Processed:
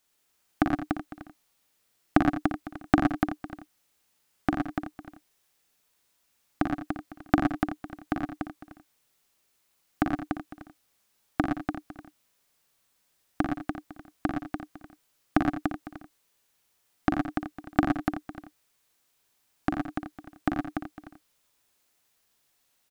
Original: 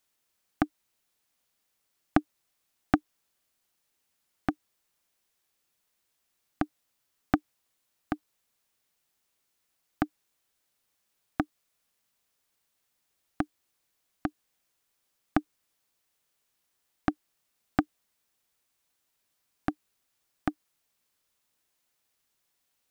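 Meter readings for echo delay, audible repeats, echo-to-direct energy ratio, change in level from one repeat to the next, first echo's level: 42 ms, 9, 0.5 dB, repeats not evenly spaced, −7.0 dB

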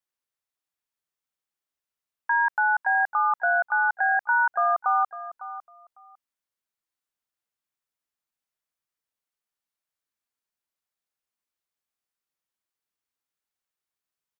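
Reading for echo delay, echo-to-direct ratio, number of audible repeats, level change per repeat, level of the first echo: 553 ms, −14.5 dB, 2, −15.5 dB, −14.5 dB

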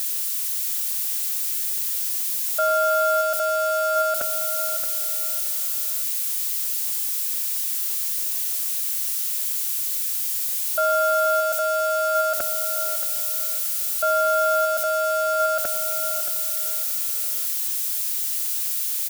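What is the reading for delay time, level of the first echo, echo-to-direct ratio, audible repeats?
627 ms, −10.0 dB, −9.5 dB, 3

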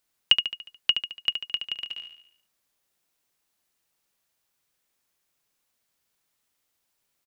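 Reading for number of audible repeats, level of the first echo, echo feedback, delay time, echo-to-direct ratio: 5, −7.5 dB, 51%, 72 ms, −6.0 dB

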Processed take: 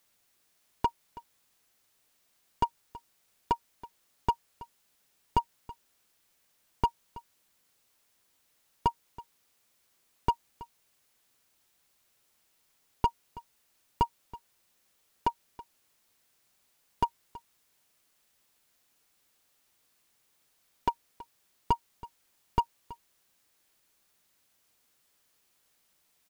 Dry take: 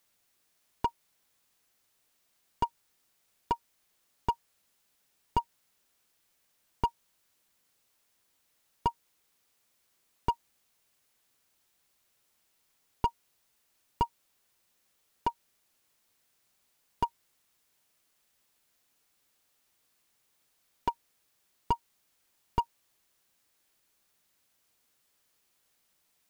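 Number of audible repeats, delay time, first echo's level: 1, 326 ms, −19.0 dB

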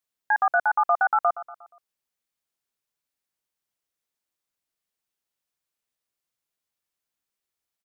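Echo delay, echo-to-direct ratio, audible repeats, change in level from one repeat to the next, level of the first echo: 119 ms, −14.5 dB, 4, −6.0 dB, −15.5 dB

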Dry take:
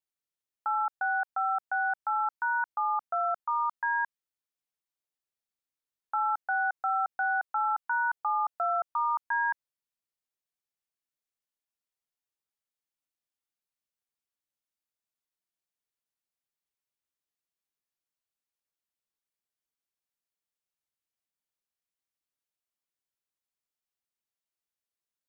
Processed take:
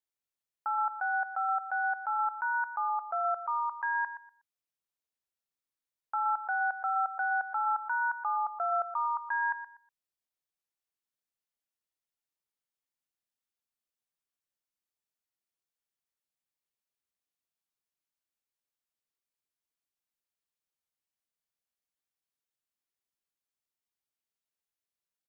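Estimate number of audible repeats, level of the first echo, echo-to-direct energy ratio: 2, −11.5 dB, −11.5 dB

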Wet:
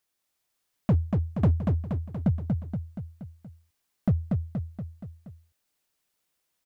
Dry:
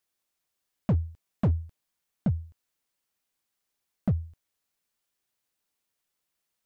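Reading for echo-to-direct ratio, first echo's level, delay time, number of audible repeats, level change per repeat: −1.5 dB, −3.5 dB, 237 ms, 5, −4.5 dB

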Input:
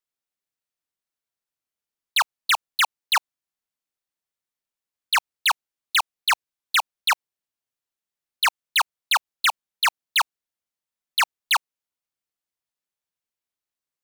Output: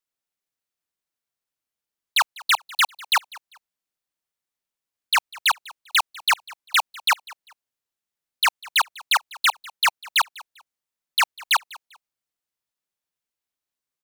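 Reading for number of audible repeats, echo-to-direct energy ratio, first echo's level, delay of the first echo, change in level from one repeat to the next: 2, −21.5 dB, −22.0 dB, 198 ms, −11.0 dB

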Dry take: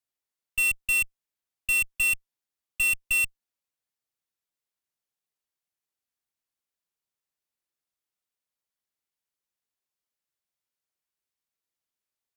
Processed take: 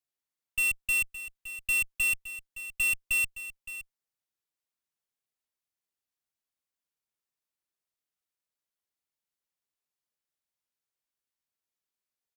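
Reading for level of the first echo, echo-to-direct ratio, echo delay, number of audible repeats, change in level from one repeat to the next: −13.5 dB, −13.5 dB, 566 ms, 1, repeats not evenly spaced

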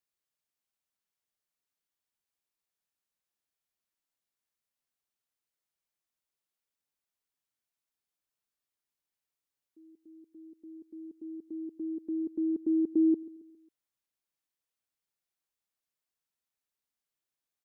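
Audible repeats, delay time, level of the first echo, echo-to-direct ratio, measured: 3, 136 ms, −19.0 dB, −18.0 dB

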